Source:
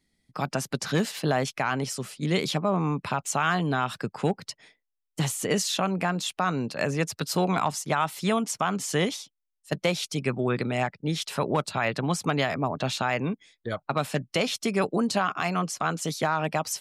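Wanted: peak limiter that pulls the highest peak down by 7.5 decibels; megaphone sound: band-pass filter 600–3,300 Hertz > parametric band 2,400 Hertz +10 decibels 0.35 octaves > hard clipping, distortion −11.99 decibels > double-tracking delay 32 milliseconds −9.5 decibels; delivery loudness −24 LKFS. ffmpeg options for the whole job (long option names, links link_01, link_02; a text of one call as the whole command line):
ffmpeg -i in.wav -filter_complex "[0:a]alimiter=limit=-20dB:level=0:latency=1,highpass=600,lowpass=3300,equalizer=frequency=2400:width_type=o:width=0.35:gain=10,asoftclip=type=hard:threshold=-27.5dB,asplit=2[link_01][link_02];[link_02]adelay=32,volume=-9.5dB[link_03];[link_01][link_03]amix=inputs=2:normalize=0,volume=11dB" out.wav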